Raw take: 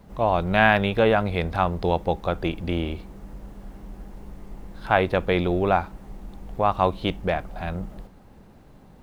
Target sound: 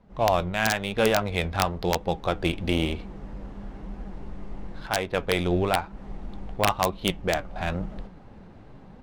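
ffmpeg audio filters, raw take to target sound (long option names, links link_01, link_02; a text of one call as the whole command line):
ffmpeg -i in.wav -af "highshelf=frequency=2900:gain=11,dynaudnorm=framelen=100:gausssize=3:maxgain=11dB,flanger=delay=3.7:depth=8.1:regen=66:speed=1:shape=triangular,adynamicsmooth=sensitivity=3:basefreq=2500,aeval=exprs='(mod(2.11*val(0)+1,2)-1)/2.11':channel_layout=same,volume=-4dB" out.wav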